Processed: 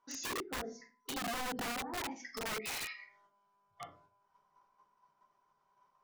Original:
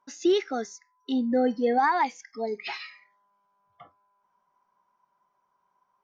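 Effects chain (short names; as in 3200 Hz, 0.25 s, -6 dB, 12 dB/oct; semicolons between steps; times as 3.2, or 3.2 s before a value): level quantiser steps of 10 dB; high shelf 4100 Hz +8 dB; treble ducked by the level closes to 460 Hz, closed at -25 dBFS; compressor 4:1, threshold -41 dBFS, peak gain reduction 16.5 dB; LPF 6300 Hz 12 dB/oct; reverb RT60 0.35 s, pre-delay 3 ms, DRR -4 dB; wrapped overs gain 33.5 dB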